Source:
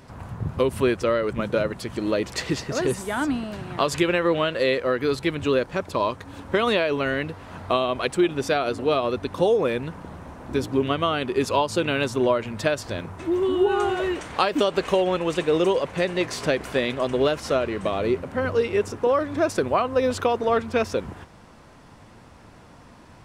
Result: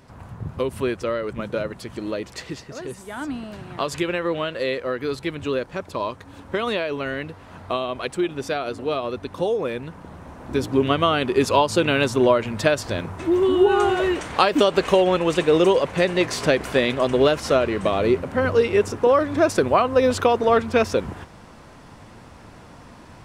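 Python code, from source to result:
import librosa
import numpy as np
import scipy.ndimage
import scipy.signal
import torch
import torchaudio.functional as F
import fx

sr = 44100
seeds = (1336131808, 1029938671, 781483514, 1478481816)

y = fx.gain(x, sr, db=fx.line((1.98, -3.0), (2.85, -10.0), (3.45, -3.0), (9.88, -3.0), (10.93, 4.0)))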